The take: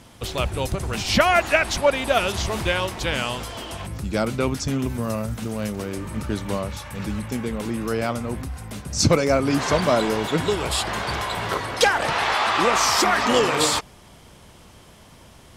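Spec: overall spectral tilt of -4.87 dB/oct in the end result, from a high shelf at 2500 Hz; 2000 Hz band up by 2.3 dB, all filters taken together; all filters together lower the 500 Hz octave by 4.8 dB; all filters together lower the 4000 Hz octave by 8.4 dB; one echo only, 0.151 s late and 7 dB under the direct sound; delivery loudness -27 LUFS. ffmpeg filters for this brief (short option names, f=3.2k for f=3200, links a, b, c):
-af "equalizer=f=500:t=o:g=-6,equalizer=f=2k:t=o:g=8.5,highshelf=f=2.5k:g=-7,equalizer=f=4k:t=o:g=-8.5,aecho=1:1:151:0.447,volume=-4dB"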